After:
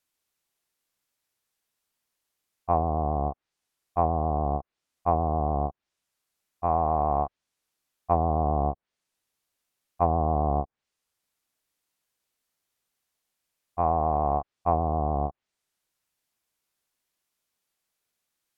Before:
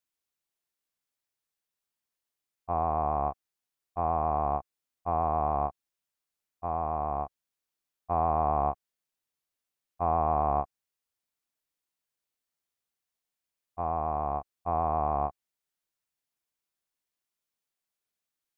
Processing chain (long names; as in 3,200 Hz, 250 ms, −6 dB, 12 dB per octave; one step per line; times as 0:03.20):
treble cut that deepens with the level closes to 490 Hz, closed at −24 dBFS
level +7.5 dB